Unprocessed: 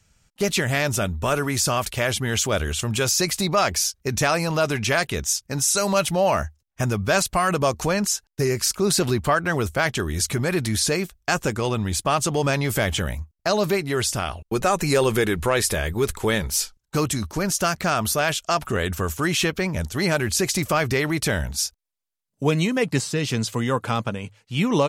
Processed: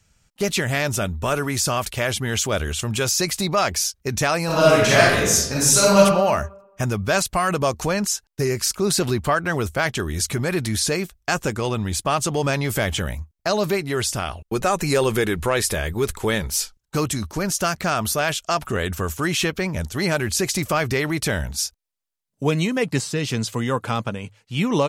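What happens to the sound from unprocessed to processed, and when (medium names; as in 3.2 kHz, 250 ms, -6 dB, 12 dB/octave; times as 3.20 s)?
4.45–5.98 s: reverb throw, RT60 0.96 s, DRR -6.5 dB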